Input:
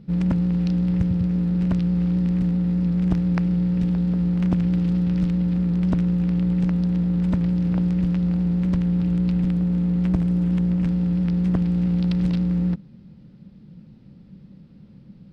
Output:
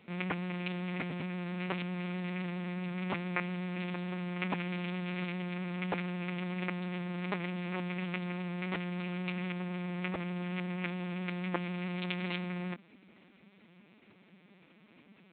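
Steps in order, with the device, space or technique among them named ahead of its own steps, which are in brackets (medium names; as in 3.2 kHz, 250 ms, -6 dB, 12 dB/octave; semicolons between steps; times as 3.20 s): talking toy (LPC vocoder at 8 kHz pitch kept; high-pass 630 Hz 12 dB/octave; peaking EQ 2.3 kHz +9 dB 0.46 oct); trim +5.5 dB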